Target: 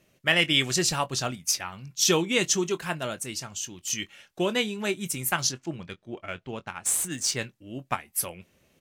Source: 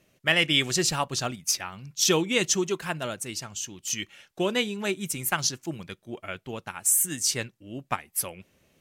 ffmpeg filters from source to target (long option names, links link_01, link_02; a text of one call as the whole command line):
ffmpeg -i in.wav -filter_complex "[0:a]asettb=1/sr,asplit=3[link_01][link_02][link_03];[link_01]atrim=end=5.524[link_04];[link_02]atrim=start=5.52:end=7.39,asetpts=PTS-STARTPTS,afade=type=in:duration=0.004:curve=qsin,afade=type=out:start_time=1.866:duration=0.004:curve=qsin,adynamicsmooth=sensitivity=6.5:basefreq=5200[link_05];[link_03]atrim=start=7.386[link_06];[link_04][link_05]acrossfade=duration=0.004:curve1=hsin:curve2=qsin[link_07];[link_07][link_06]acrossfade=duration=0.004:curve1=qsin:curve2=hsin,asplit=2[link_08][link_09];[link_09]adelay=23,volume=-13.5dB[link_10];[link_08][link_10]amix=inputs=2:normalize=0" out.wav